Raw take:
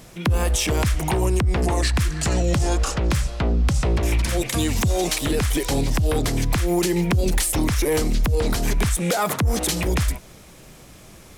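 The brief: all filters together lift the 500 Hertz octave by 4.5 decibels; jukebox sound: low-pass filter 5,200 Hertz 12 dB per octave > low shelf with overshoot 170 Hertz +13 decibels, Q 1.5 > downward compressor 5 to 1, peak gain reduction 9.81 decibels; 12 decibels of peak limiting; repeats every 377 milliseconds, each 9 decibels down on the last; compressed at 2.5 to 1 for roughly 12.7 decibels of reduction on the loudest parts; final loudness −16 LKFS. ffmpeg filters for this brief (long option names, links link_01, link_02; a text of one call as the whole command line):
ffmpeg -i in.wav -af "equalizer=frequency=500:width_type=o:gain=7.5,acompressor=threshold=-33dB:ratio=2.5,alimiter=level_in=6dB:limit=-24dB:level=0:latency=1,volume=-6dB,lowpass=5200,lowshelf=frequency=170:width_type=q:width=1.5:gain=13,aecho=1:1:377|754|1131|1508:0.355|0.124|0.0435|0.0152,acompressor=threshold=-27dB:ratio=5,volume=17dB" out.wav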